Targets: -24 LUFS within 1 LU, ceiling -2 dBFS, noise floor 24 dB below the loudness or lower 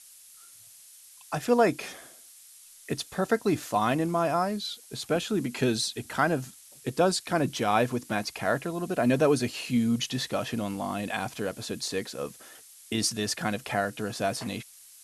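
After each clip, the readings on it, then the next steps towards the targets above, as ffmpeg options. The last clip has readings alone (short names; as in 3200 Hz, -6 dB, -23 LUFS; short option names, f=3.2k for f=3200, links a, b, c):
noise floor -52 dBFS; noise floor target -53 dBFS; loudness -28.5 LUFS; peak -9.5 dBFS; loudness target -24.0 LUFS
-> -af "afftdn=nr=6:nf=-52"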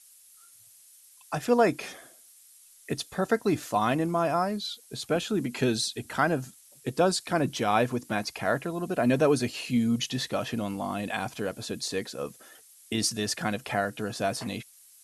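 noise floor -56 dBFS; loudness -28.5 LUFS; peak -9.5 dBFS; loudness target -24.0 LUFS
-> -af "volume=4.5dB"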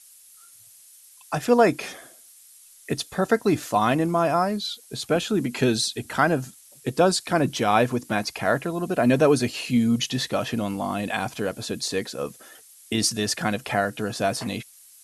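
loudness -24.0 LUFS; peak -5.0 dBFS; noise floor -51 dBFS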